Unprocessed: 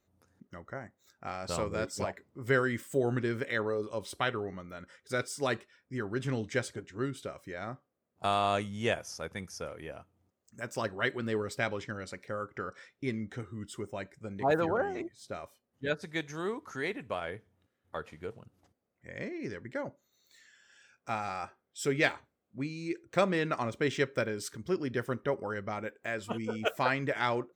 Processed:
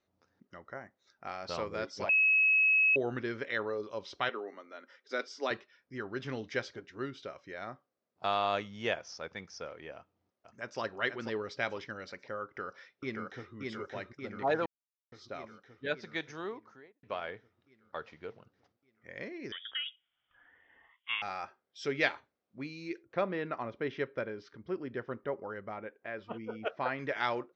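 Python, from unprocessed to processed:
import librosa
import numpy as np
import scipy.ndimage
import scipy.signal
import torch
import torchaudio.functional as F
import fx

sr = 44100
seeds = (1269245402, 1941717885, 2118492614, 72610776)

y = fx.ellip_highpass(x, sr, hz=230.0, order=4, stop_db=40, at=(4.29, 5.51))
y = fx.echo_throw(y, sr, start_s=9.95, length_s=0.85, ms=490, feedback_pct=35, wet_db=-6.5)
y = fx.echo_throw(y, sr, start_s=12.44, length_s=1.1, ms=580, feedback_pct=65, wet_db=-2.0)
y = fx.studio_fade_out(y, sr, start_s=16.29, length_s=0.74)
y = fx.freq_invert(y, sr, carrier_hz=3500, at=(19.52, 21.22))
y = fx.spacing_loss(y, sr, db_at_10k=29, at=(23.02, 26.98), fade=0.02)
y = fx.edit(y, sr, fx.bleep(start_s=2.09, length_s=0.87, hz=2570.0, db=-21.0),
    fx.silence(start_s=14.66, length_s=0.46), tone=tone)
y = scipy.signal.sosfilt(scipy.signal.butter(8, 5800.0, 'lowpass', fs=sr, output='sos'), y)
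y = fx.low_shelf(y, sr, hz=220.0, db=-11.0)
y = F.gain(torch.from_numpy(y), -1.0).numpy()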